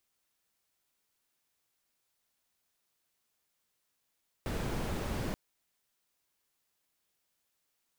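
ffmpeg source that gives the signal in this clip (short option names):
-f lavfi -i "anoisesrc=c=brown:a=0.0881:d=0.88:r=44100:seed=1"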